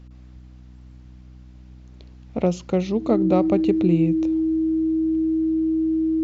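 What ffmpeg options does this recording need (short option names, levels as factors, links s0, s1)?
-af "bandreject=f=62.3:t=h:w=4,bandreject=f=124.6:t=h:w=4,bandreject=f=186.9:t=h:w=4,bandreject=f=249.2:t=h:w=4,bandreject=f=311.5:t=h:w=4,bandreject=f=320:w=30"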